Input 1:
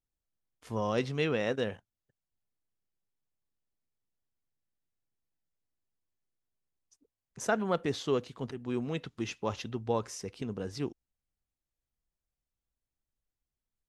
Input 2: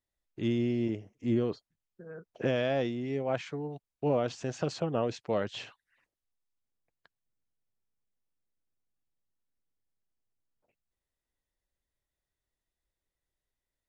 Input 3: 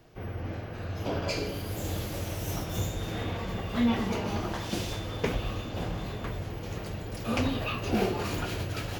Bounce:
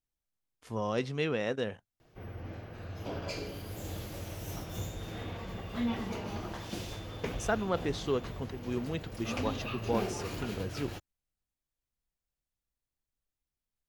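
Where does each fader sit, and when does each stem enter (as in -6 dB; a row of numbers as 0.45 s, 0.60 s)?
-1.5 dB, mute, -7.0 dB; 0.00 s, mute, 2.00 s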